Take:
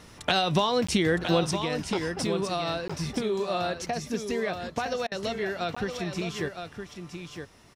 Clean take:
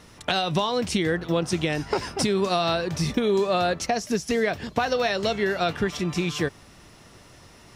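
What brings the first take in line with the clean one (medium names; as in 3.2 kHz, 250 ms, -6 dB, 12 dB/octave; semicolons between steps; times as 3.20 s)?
interpolate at 0.87/2.88/5.75 s, 15 ms; interpolate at 5.07 s, 45 ms; inverse comb 964 ms -7.5 dB; trim 0 dB, from 1.51 s +6.5 dB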